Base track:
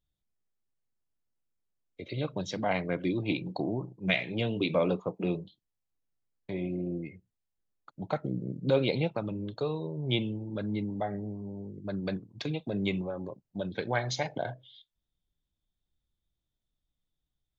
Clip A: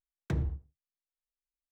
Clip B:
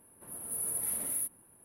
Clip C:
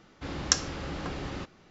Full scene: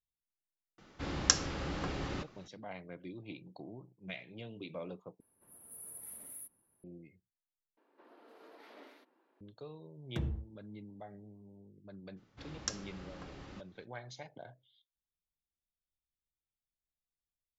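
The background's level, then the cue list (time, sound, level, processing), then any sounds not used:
base track -16.5 dB
0.78 s: add C -2 dB
5.20 s: replace with B -14.5 dB
7.77 s: replace with B -4 dB + elliptic band-pass 300–4600 Hz
9.86 s: add A -5 dB
12.16 s: add C -13.5 dB, fades 0.02 s

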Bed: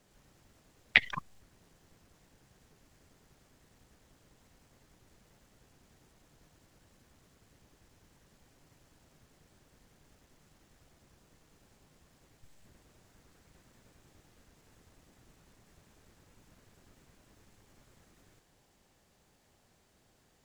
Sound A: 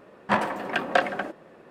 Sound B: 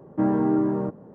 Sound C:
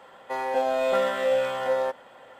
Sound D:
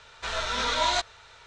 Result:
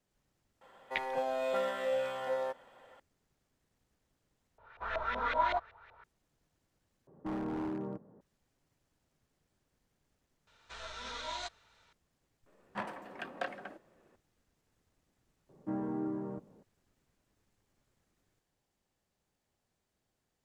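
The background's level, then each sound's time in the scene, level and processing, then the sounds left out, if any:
bed -14.5 dB
0.61 s: add C -9.5 dB
4.58 s: replace with D -8.5 dB + LFO low-pass saw up 5.3 Hz 680–2300 Hz
7.07 s: replace with B -13.5 dB + wavefolder -18 dBFS
10.47 s: add D -15.5 dB
12.46 s: add A -16.5 dB
15.49 s: add B -14.5 dB

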